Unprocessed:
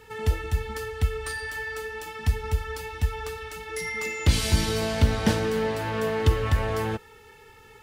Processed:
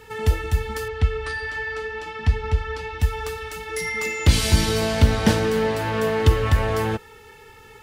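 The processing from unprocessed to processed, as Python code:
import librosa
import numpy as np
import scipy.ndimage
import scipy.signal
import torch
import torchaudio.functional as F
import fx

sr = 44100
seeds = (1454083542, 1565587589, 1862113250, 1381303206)

y = fx.lowpass(x, sr, hz=4300.0, slope=12, at=(0.88, 3.0))
y = F.gain(torch.from_numpy(y), 4.5).numpy()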